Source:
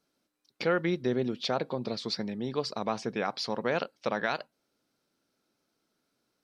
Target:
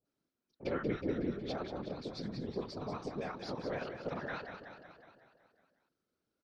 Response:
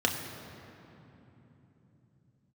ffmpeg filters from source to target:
-filter_complex "[0:a]asplit=2[link_01][link_02];[link_02]aecho=0:1:184|368|552|736|920|1104|1288|1472:0.422|0.253|0.152|0.0911|0.0547|0.0328|0.0197|0.0118[link_03];[link_01][link_03]amix=inputs=2:normalize=0,afftfilt=real='hypot(re,im)*cos(2*PI*random(0))':imag='hypot(re,im)*sin(2*PI*random(1))':win_size=512:overlap=0.75,highshelf=frequency=2100:gain=-9,acrossover=split=820[link_04][link_05];[link_05]adelay=50[link_06];[link_04][link_06]amix=inputs=2:normalize=0,volume=-1dB"

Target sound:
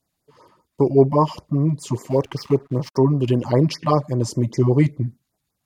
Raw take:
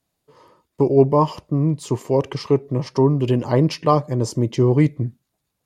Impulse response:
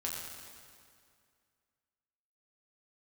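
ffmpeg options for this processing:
-filter_complex "[0:a]asettb=1/sr,asplit=3[link_01][link_02][link_03];[link_01]atrim=end=2.104[link_04];[link_02]atrim=start=2.1:end=2.97,asetpts=PTS-STARTPTS,afade=type=in:duration=0.004:curve=qsin,afade=type=out:start_time=0.866:duration=0.004:curve=qsin,aeval=exprs='sgn(val(0))*max(abs(val(0))-0.00596,0)':channel_layout=same[link_05];[link_03]atrim=start=2.966[link_06];[link_04][link_05]acrossfade=duration=0.004:curve1=hsin:curve2=qsin[link_07];[link_07][link_06]acrossfade=duration=0.004:curve1=qsin:curve2=hsin,afftfilt=real='re*(1-between(b*sr/1024,380*pow(3400/380,0.5+0.5*sin(2*PI*5.1*pts/sr))/1.41,380*pow(3400/380,0.5+0.5*sin(2*PI*5.1*pts/sr))*1.41))':imag='im*(1-between(b*sr/1024,380*pow(3400/380,0.5+0.5*sin(2*PI*5.1*pts/sr))/1.41,380*pow(3400/380,0.5+0.5*sin(2*PI*5.1*pts/sr))*1.41))':win_size=1024:overlap=0.75"

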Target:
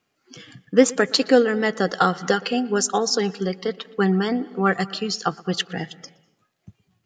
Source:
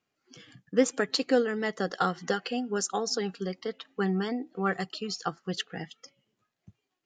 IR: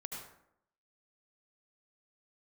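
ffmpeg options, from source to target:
-filter_complex "[0:a]asplit=2[link_01][link_02];[link_02]lowpass=frequency=3700:poles=1[link_03];[1:a]atrim=start_sample=2205,adelay=119[link_04];[link_03][link_04]afir=irnorm=-1:irlink=0,volume=-17.5dB[link_05];[link_01][link_05]amix=inputs=2:normalize=0,volume=8.5dB"

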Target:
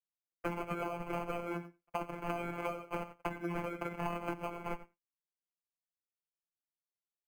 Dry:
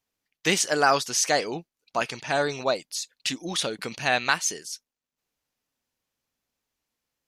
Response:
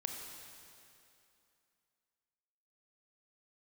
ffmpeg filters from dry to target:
-filter_complex "[0:a]acrusher=samples=24:mix=1:aa=0.000001,agate=range=-33dB:threshold=-49dB:ratio=3:detection=peak,aecho=1:1:88:0.126,asplit=2[link_01][link_02];[1:a]atrim=start_sample=2205,afade=type=out:start_time=0.16:duration=0.01,atrim=end_sample=7497[link_03];[link_02][link_03]afir=irnorm=-1:irlink=0,volume=-11dB[link_04];[link_01][link_04]amix=inputs=2:normalize=0,afftfilt=real='hypot(re,im)*cos(PI*b)':imag='0':win_size=1024:overlap=0.75,acrossover=split=240|1100|2500[link_05][link_06][link_07][link_08];[link_05]acompressor=threshold=-33dB:ratio=4[link_09];[link_06]acompressor=threshold=-29dB:ratio=4[link_10];[link_07]acompressor=threshold=-43dB:ratio=4[link_11];[link_08]acompressor=threshold=-36dB:ratio=4[link_12];[link_09][link_10][link_11][link_12]amix=inputs=4:normalize=0,highshelf=frequency=2900:width_type=q:width=3:gain=-12,acompressor=threshold=-37dB:ratio=10,volume=3dB"

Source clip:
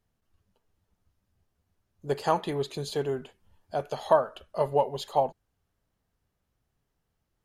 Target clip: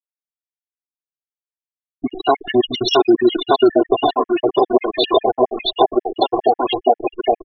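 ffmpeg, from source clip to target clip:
ffmpeg -i in.wav -af "asetrate=38170,aresample=44100,atempo=1.15535,equalizer=frequency=250:width_type=o:width=1:gain=11,equalizer=frequency=2000:width_type=o:width=1:gain=-6,equalizer=frequency=8000:width_type=o:width=1:gain=-9,aecho=1:1:660|1221|1698|2103|2448:0.631|0.398|0.251|0.158|0.1,flanger=delay=1.4:depth=5.7:regen=-63:speed=0.37:shape=sinusoidal,highpass=150,acompressor=threshold=-37dB:ratio=16,acrusher=bits=9:dc=4:mix=0:aa=0.000001,aecho=1:1:2.8:0.82,afftfilt=real='re*gte(hypot(re,im),0.00708)':imag='im*gte(hypot(re,im),0.00708)':win_size=1024:overlap=0.75,tiltshelf=frequency=640:gain=-8.5,alimiter=level_in=30.5dB:limit=-1dB:release=50:level=0:latency=1,afftfilt=real='re*gt(sin(2*PI*7.4*pts/sr)*(1-2*mod(floor(b*sr/1024/1700),2)),0)':imag='im*gt(sin(2*PI*7.4*pts/sr)*(1-2*mod(floor(b*sr/1024/1700),2)),0)':win_size=1024:overlap=0.75,volume=-1dB" out.wav

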